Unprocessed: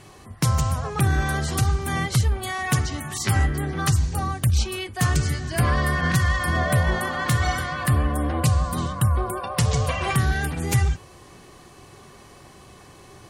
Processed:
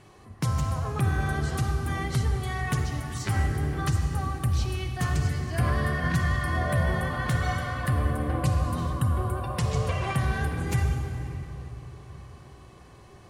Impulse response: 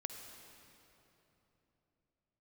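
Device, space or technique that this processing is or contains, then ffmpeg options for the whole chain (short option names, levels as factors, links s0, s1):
swimming-pool hall: -filter_complex "[1:a]atrim=start_sample=2205[s0];[0:a][s0]afir=irnorm=-1:irlink=0,highshelf=f=3800:g=-7,volume=0.75"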